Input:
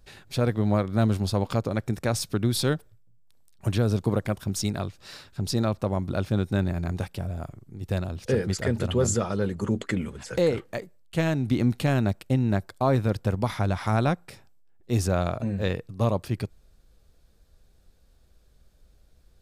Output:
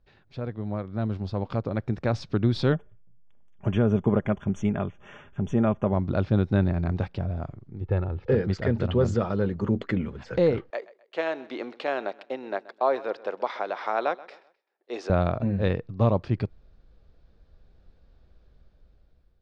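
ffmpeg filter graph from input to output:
ffmpeg -i in.wav -filter_complex "[0:a]asettb=1/sr,asplit=3[link_01][link_02][link_03];[link_01]atrim=end=2.724[link_04];[link_02]atrim=start=2.72:end=5.93,asetpts=PTS-STARTPTS,afade=type=in:duration=0.004:curve=qsin,afade=type=out:start_time=3.206:duration=0.004:curve=qsin,asuperstop=centerf=4500:order=20:qfactor=2,aecho=1:1:4.9:0.37,atrim=end_sample=141561[link_05];[link_03]atrim=start=5.926[link_06];[link_04][link_05]acrossfade=duration=0.004:curve1=hsin:curve2=qsin[link_07];[link_07][link_06]acrossfade=duration=0.004:curve1=qsin:curve2=hsin,asettb=1/sr,asplit=3[link_08][link_09][link_10];[link_08]atrim=end=7.814[link_11];[link_09]atrim=start=7.81:end=8.32,asetpts=PTS-STARTPTS,afade=type=in:duration=0.004:curve=qsin,afade=type=out:start_time=0.506:duration=0.004:curve=qsin,lowpass=2100,aecho=1:1:2.3:0.54,atrim=end_sample=22491[link_12];[link_10]atrim=start=8.316[link_13];[link_11][link_12]acrossfade=duration=0.004:curve1=hsin:curve2=qsin[link_14];[link_14][link_13]acrossfade=duration=0.004:curve1=qsin:curve2=hsin,asettb=1/sr,asplit=3[link_15][link_16][link_17];[link_15]atrim=end=10.704[link_18];[link_16]atrim=start=10.7:end=15.1,asetpts=PTS-STARTPTS,afade=type=in:duration=0.004:curve=qsin,afade=type=out:start_time=4.396:duration=0.004:curve=qsin,highpass=frequency=420:width=0.5412,highpass=frequency=420:width=1.3066,aecho=1:1:129|258|387:0.106|0.0371|0.013,atrim=end_sample=194040[link_19];[link_17]atrim=start=15.096[link_20];[link_18][link_19]acrossfade=duration=0.004:curve1=hsin:curve2=qsin[link_21];[link_21][link_20]acrossfade=duration=0.004:curve1=qsin:curve2=hsin,lowpass=frequency=5100:width=0.5412,lowpass=frequency=5100:width=1.3066,highshelf=frequency=3000:gain=-11,dynaudnorm=framelen=660:gausssize=5:maxgain=15dB,volume=-9dB" out.wav

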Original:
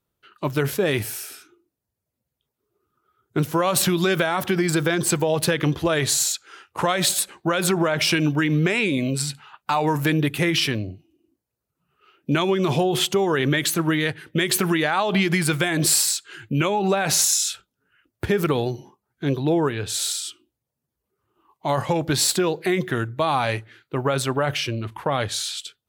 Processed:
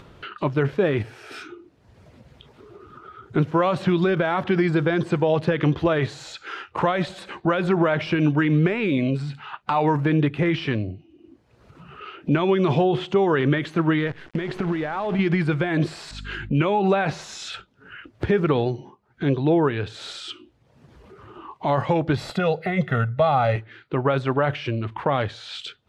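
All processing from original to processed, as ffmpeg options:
ffmpeg -i in.wav -filter_complex "[0:a]asettb=1/sr,asplit=3[link_01][link_02][link_03];[link_01]atrim=end=14.074[link_04];[link_02]atrim=start=14.07:end=15.19,asetpts=PTS-STARTPTS,afade=type=in:duration=0.004:curve=qsin,afade=type=out:start_time=1.116:duration=0.004:curve=qsin,acompressor=threshold=-21dB:ratio=5:attack=3.2:release=140:knee=1:detection=peak,acrusher=bits=6:dc=4:mix=0:aa=0.000001[link_05];[link_03]atrim=start=15.186[link_06];[link_04][link_05]acrossfade=duration=0.004:curve1=hsin:curve2=qsin[link_07];[link_07][link_06]acrossfade=duration=0.004:curve1=qsin:curve2=hsin,asettb=1/sr,asplit=3[link_08][link_09][link_10];[link_08]atrim=end=16.114[link_11];[link_09]atrim=start=16.11:end=16.57,asetpts=PTS-STARTPTS,afade=type=in:duration=0.004:curve=qsin,afade=type=out:start_time=0.456:duration=0.004:curve=qsin,deesser=0.75,aeval=exprs='val(0)+0.00501*(sin(2*PI*50*n/s)+sin(2*PI*2*50*n/s)/2+sin(2*PI*3*50*n/s)/3+sin(2*PI*4*50*n/s)/4+sin(2*PI*5*50*n/s)/5)':channel_layout=same[link_12];[link_10]atrim=start=16.566[link_13];[link_11][link_12]acrossfade=duration=0.004:curve1=hsin:curve2=qsin[link_14];[link_14][link_13]acrossfade=duration=0.004:curve1=qsin:curve2=hsin,asettb=1/sr,asplit=3[link_15][link_16][link_17];[link_15]atrim=end=22.164[link_18];[link_16]atrim=start=22.16:end=23.56,asetpts=PTS-STARTPTS,afade=type=in:duration=0.004:curve=qsin,afade=type=out:start_time=1.396:duration=0.004:curve=qsin,equalizer=frequency=12000:width=1.9:gain=12,aecho=1:1:1.5:0.94,atrim=end_sample=61740[link_19];[link_17]atrim=start=23.556[link_20];[link_18][link_19]acrossfade=duration=0.004:curve1=hsin:curve2=qsin[link_21];[link_21][link_20]acrossfade=duration=0.004:curve1=qsin:curve2=hsin,deesser=0.85,lowpass=3200,acompressor=mode=upward:threshold=-25dB:ratio=2.5,volume=1.5dB" out.wav

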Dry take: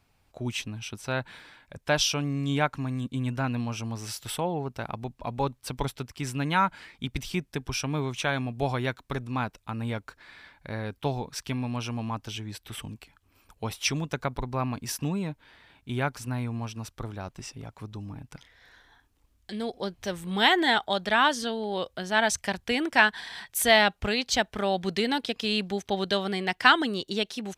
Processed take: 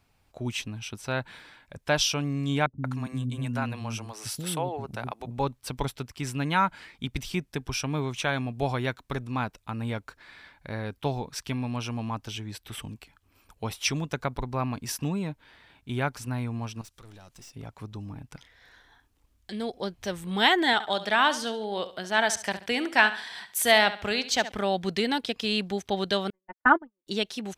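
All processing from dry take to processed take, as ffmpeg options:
ffmpeg -i in.wav -filter_complex "[0:a]asettb=1/sr,asplit=3[link_01][link_02][link_03];[link_01]atrim=end=2.664[link_04];[link_02]atrim=start=2.66:end=5.31,asetpts=PTS-STARTPTS,afade=type=in:duration=0.004:curve=qsin,afade=type=out:start_time=2.646:duration=0.004:curve=qsin,highpass=59,equalizer=frequency=10000:width_type=o:width=0.5:gain=5,acrossover=split=330[link_05][link_06];[link_06]adelay=180[link_07];[link_05][link_07]amix=inputs=2:normalize=0,atrim=end_sample=116865[link_08];[link_03]atrim=start=5.306[link_09];[link_04][link_08]acrossfade=duration=0.004:curve1=hsin:curve2=qsin[link_10];[link_10][link_09]acrossfade=duration=0.004:curve1=qsin:curve2=hsin,asettb=1/sr,asplit=3[link_11][link_12][link_13];[link_11]atrim=end=16.814[link_14];[link_12]atrim=start=16.81:end=17.56,asetpts=PTS-STARTPTS,afade=type=in:duration=0.004:curve=qsin,afade=type=out:start_time=0.746:duration=0.004:curve=qsin,equalizer=frequency=8100:width=0.33:gain=12,acompressor=threshold=-41dB:ratio=4:attack=3.2:release=140:knee=1:detection=peak,aeval=exprs='(tanh(178*val(0)+0.45)-tanh(0.45))/178':channel_layout=same[link_15];[link_13]atrim=start=17.556[link_16];[link_14][link_15]acrossfade=duration=0.004:curve1=hsin:curve2=qsin[link_17];[link_17][link_16]acrossfade=duration=0.004:curve1=qsin:curve2=hsin,asettb=1/sr,asplit=3[link_18][link_19][link_20];[link_18]atrim=end=20.734[link_21];[link_19]atrim=start=20.73:end=24.52,asetpts=PTS-STARTPTS,afade=type=in:duration=0.004:curve=qsin,afade=type=out:start_time=3.786:duration=0.004:curve=qsin,highpass=frequency=220:poles=1,aecho=1:1:69|138|207:0.211|0.0676|0.0216,atrim=end_sample=167139[link_22];[link_20]atrim=start=24.516[link_23];[link_21][link_22]acrossfade=duration=0.004:curve1=hsin:curve2=qsin[link_24];[link_24][link_23]acrossfade=duration=0.004:curve1=qsin:curve2=hsin,asettb=1/sr,asplit=3[link_25][link_26][link_27];[link_25]atrim=end=26.304[link_28];[link_26]atrim=start=26.3:end=27.07,asetpts=PTS-STARTPTS,afade=type=in:duration=0.004:curve=qsin,afade=type=out:start_time=0.766:duration=0.004:curve=qsin,agate=range=-58dB:threshold=-24dB:ratio=16:release=100:detection=peak,lowpass=frequency=1400:width=0.5412,lowpass=frequency=1400:width=1.3066,aecho=1:1:3.4:0.99,atrim=end_sample=33957[link_29];[link_27]atrim=start=27.066[link_30];[link_28][link_29]acrossfade=duration=0.004:curve1=hsin:curve2=qsin[link_31];[link_31][link_30]acrossfade=duration=0.004:curve1=qsin:curve2=hsin" out.wav

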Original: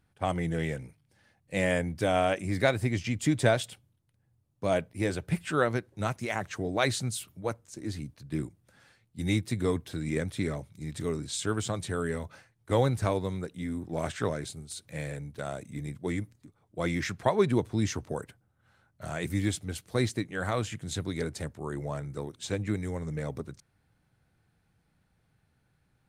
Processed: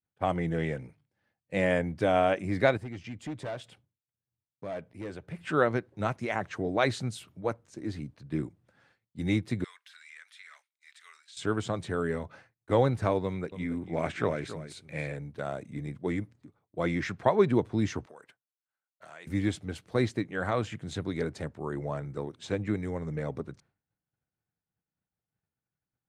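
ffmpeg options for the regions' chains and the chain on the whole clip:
ffmpeg -i in.wav -filter_complex "[0:a]asettb=1/sr,asplit=3[link_01][link_02][link_03];[link_01]atrim=end=2.774[link_04];[link_02]atrim=start=2.77:end=5.39,asetpts=PTS-STARTPTS,afade=type=in:duration=0.004:curve=qsin,afade=type=out:start_time=2.616:duration=0.004:curve=qsin,asoftclip=type=hard:threshold=-23dB,acompressor=threshold=-53dB:ratio=1.5:attack=3.2:release=140:knee=1:detection=peak[link_05];[link_03]atrim=start=5.386[link_06];[link_04][link_05]acrossfade=duration=0.004:curve1=hsin:curve2=qsin[link_07];[link_07][link_06]acrossfade=duration=0.004:curve1=qsin:curve2=hsin,asettb=1/sr,asplit=3[link_08][link_09][link_10];[link_08]atrim=end=9.644[link_11];[link_09]atrim=start=9.64:end=11.37,asetpts=PTS-STARTPTS,afade=type=in:duration=0.004:curve=qsin,afade=type=out:start_time=1.726:duration=0.004:curve=qsin,highpass=frequency=1500:width=0.5412,highpass=frequency=1500:width=1.3066,acompressor=threshold=-46dB:ratio=3:attack=3.2:release=140:knee=1:detection=peak[link_12];[link_10]atrim=start=11.366[link_13];[link_11][link_12]acrossfade=duration=0.004:curve1=hsin:curve2=qsin[link_14];[link_14][link_13]acrossfade=duration=0.004:curve1=qsin:curve2=hsin,asettb=1/sr,asplit=3[link_15][link_16][link_17];[link_15]atrim=end=13.244[link_18];[link_16]atrim=start=13.24:end=15.12,asetpts=PTS-STARTPTS,afade=type=in:duration=0.004:curve=qsin,afade=type=out:start_time=1.876:duration=0.004:curve=qsin,equalizer=frequency=2300:width=3.9:gain=8,aecho=1:1:278:0.237,atrim=end_sample=82908[link_19];[link_17]atrim=start=15.116[link_20];[link_18][link_19]acrossfade=duration=0.004:curve1=hsin:curve2=qsin[link_21];[link_21][link_20]acrossfade=duration=0.004:curve1=qsin:curve2=hsin,asettb=1/sr,asplit=3[link_22][link_23][link_24];[link_22]atrim=end=18.064[link_25];[link_23]atrim=start=18.06:end=19.27,asetpts=PTS-STARTPTS,afade=type=in:duration=0.004:curve=qsin,afade=type=out:start_time=1.206:duration=0.004:curve=qsin,acompressor=threshold=-38dB:ratio=4:attack=3.2:release=140:knee=1:detection=peak,highpass=frequency=1400:poles=1[link_26];[link_24]atrim=start=19.266[link_27];[link_25][link_26]acrossfade=duration=0.004:curve1=hsin:curve2=qsin[link_28];[link_28][link_27]acrossfade=duration=0.004:curve1=qsin:curve2=hsin,aemphasis=mode=reproduction:type=75fm,agate=range=-33dB:threshold=-56dB:ratio=3:detection=peak,lowshelf=frequency=86:gain=-10.5,volume=1.5dB" out.wav

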